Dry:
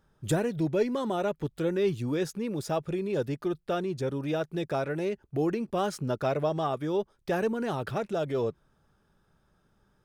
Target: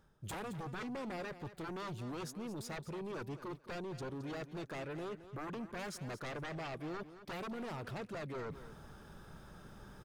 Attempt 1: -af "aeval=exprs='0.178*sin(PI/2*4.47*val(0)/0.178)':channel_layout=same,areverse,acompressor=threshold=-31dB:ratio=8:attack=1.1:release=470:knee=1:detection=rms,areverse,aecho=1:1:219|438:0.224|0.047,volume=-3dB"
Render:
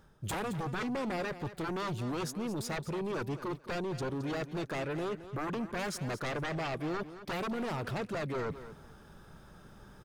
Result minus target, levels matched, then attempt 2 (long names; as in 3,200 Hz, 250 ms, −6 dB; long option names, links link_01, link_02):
downward compressor: peak gain reduction −7.5 dB
-af "aeval=exprs='0.178*sin(PI/2*4.47*val(0)/0.178)':channel_layout=same,areverse,acompressor=threshold=-39.5dB:ratio=8:attack=1.1:release=470:knee=1:detection=rms,areverse,aecho=1:1:219|438:0.224|0.047,volume=-3dB"